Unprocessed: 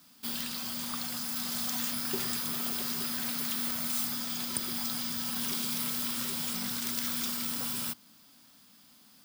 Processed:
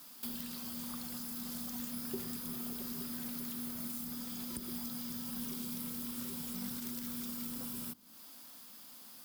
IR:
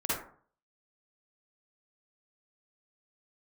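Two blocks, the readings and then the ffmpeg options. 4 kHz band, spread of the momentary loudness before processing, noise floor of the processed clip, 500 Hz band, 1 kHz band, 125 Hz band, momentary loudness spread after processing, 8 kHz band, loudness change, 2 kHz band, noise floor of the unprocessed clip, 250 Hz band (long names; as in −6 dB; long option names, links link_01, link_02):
−13.0 dB, 4 LU, −53 dBFS, −5.5 dB, −11.0 dB, −4.0 dB, 11 LU, −10.0 dB, −9.0 dB, −13.5 dB, −59 dBFS, −2.0 dB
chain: -filter_complex "[0:a]acrossover=split=310[link_01][link_02];[link_02]acompressor=threshold=-48dB:ratio=8[link_03];[link_01][link_03]amix=inputs=2:normalize=0,equalizer=frequency=125:width_type=o:width=1:gain=-7,equalizer=frequency=500:width_type=o:width=1:gain=4,equalizer=frequency=1000:width_type=o:width=1:gain=3,equalizer=frequency=16000:width_type=o:width=1:gain=10,volume=1dB"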